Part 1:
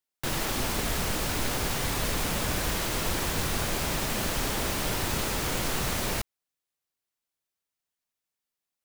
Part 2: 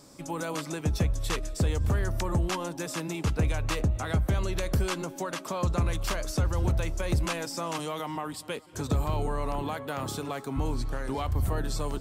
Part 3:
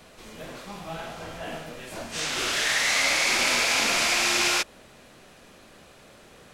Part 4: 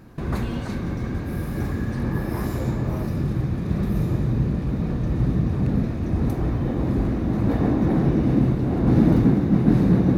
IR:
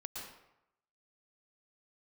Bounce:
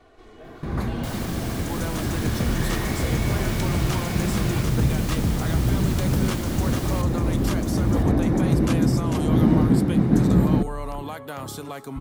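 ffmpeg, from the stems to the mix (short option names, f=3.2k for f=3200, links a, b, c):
-filter_complex "[0:a]adelay=800,volume=-6dB,asplit=2[a][b];[b]volume=-8.5dB[c];[1:a]equalizer=f=12k:w=1.5:g=5.5,adelay=1400,volume=-0.5dB[d];[2:a]lowpass=f=1.1k:p=1,aecho=1:1:2.7:0.83,asoftclip=type=tanh:threshold=-31dB,volume=-2.5dB[e];[3:a]adelay=450,volume=-1dB[f];[c]aecho=0:1:1012:1[g];[a][d][e][f][g]amix=inputs=5:normalize=0,bandreject=f=2.6k:w=24"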